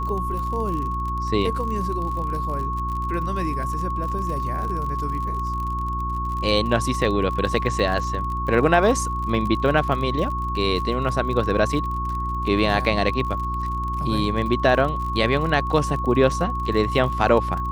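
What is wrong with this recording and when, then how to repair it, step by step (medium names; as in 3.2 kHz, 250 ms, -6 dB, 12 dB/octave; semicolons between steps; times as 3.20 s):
crackle 43 per s -29 dBFS
hum 60 Hz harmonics 6 -28 dBFS
whine 1.1 kHz -26 dBFS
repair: de-click; de-hum 60 Hz, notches 6; band-stop 1.1 kHz, Q 30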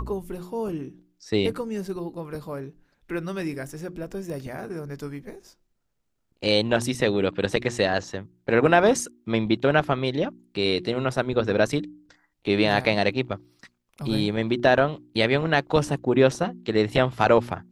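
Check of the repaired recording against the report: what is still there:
nothing left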